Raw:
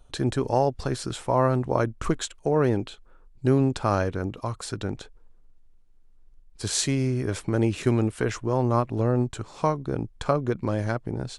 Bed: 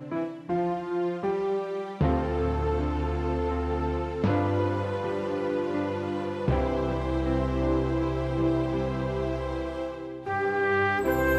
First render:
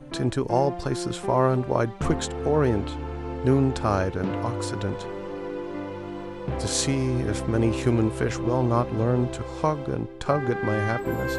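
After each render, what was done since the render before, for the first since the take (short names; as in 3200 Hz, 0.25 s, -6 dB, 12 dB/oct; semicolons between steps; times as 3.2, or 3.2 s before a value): add bed -4.5 dB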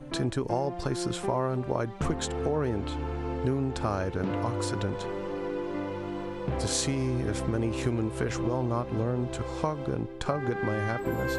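compressor 4:1, threshold -25 dBFS, peak gain reduction 9 dB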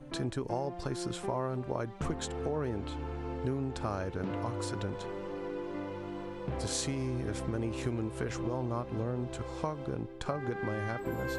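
gain -5.5 dB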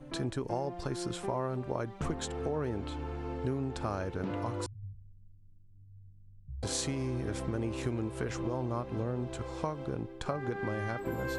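4.66–6.63 inverse Chebyshev low-pass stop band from 560 Hz, stop band 80 dB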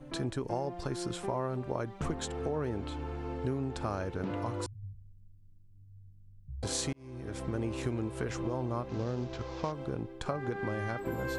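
6.93–7.55 fade in; 8.89–9.72 CVSD 32 kbps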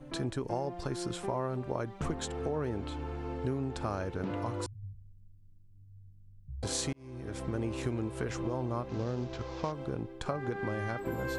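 nothing audible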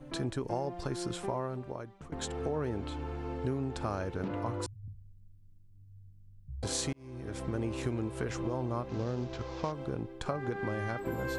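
1.25–2.12 fade out, to -19 dB; 4.28–4.88 three-band expander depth 40%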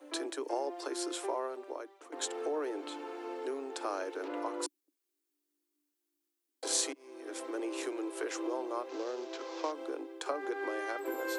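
steep high-pass 290 Hz 96 dB/oct; high shelf 5800 Hz +7.5 dB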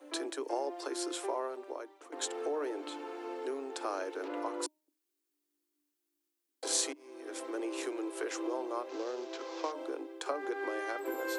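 de-hum 307.5 Hz, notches 3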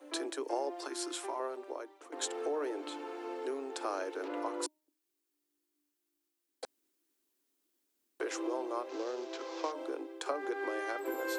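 0.86–1.4 bell 490 Hz -12.5 dB 0.54 oct; 6.65–8.2 room tone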